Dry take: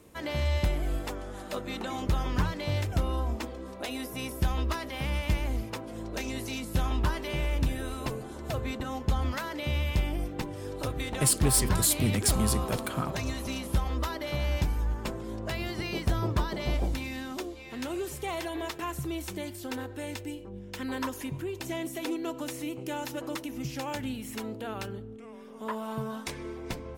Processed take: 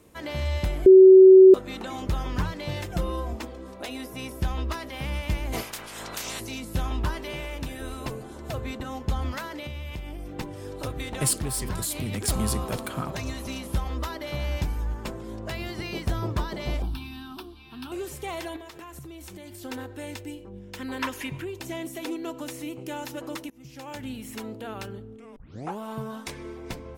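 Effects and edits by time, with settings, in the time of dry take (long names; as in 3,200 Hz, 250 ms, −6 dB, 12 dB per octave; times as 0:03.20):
0:00.86–0:01.54: beep over 378 Hz −7 dBFS
0:02.68–0:03.33: comb filter 5.7 ms, depth 62%
0:03.88–0:04.72: high-shelf EQ 9,100 Hz −5.5 dB
0:05.52–0:06.39: ceiling on every frequency bin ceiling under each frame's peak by 28 dB
0:07.33–0:07.81: low-shelf EQ 190 Hz −9.5 dB
0:09.46–0:10.36: downward compressor, threshold −32 dBFS
0:11.40–0:12.28: downward compressor, threshold −26 dBFS
0:16.82–0:17.92: phaser with its sweep stopped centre 2,000 Hz, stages 6
0:18.56–0:19.62: downward compressor 12 to 1, threshold −38 dBFS
0:20.99–0:21.45: parametric band 2,300 Hz +10.5 dB 1.6 octaves
0:23.50–0:24.18: fade in, from −24 dB
0:25.36: tape start 0.42 s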